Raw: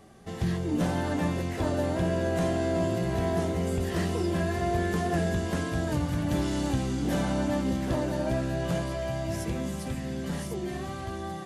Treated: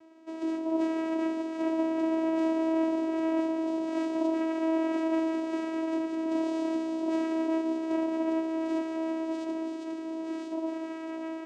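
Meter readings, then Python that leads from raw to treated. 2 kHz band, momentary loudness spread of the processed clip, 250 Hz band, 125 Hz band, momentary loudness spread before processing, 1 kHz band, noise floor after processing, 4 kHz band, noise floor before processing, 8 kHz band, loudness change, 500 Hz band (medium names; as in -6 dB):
-6.5 dB, 8 LU, +1.5 dB, under -30 dB, 6 LU, -2.5 dB, -38 dBFS, -8.0 dB, -36 dBFS, under -10 dB, -1.0 dB, -1.0 dB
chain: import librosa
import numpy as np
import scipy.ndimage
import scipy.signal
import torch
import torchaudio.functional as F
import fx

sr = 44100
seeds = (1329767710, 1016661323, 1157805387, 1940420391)

y = fx.vocoder(x, sr, bands=4, carrier='saw', carrier_hz=323.0)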